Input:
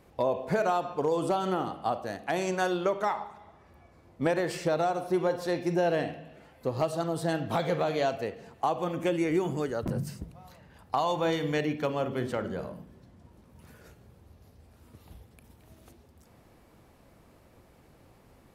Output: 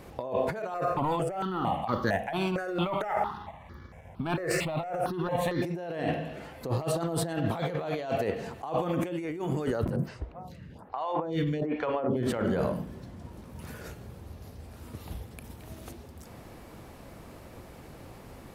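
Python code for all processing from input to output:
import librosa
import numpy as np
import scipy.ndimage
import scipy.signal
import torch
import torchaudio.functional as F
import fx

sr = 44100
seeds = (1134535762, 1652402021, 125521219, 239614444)

y = fx.chain(x, sr, fx.high_shelf(hz=8900.0, db=-7.0),
    fx.leveller(passes=1),
    fx.phaser_held(hz=4.4, low_hz=890.0, high_hz=2600.0), at=(0.74, 5.62))
y = fx.chain(y, sr, fx.lowpass(hz=1900.0, slope=6),
    fx.stagger_phaser(hz=1.2), at=(9.96, 12.23))
y = fx.dynamic_eq(y, sr, hz=5900.0, q=1.2, threshold_db=-57.0, ratio=4.0, max_db=-5)
y = fx.over_compress(y, sr, threshold_db=-36.0, ratio=-1.0)
y = y * 10.0 ** (5.5 / 20.0)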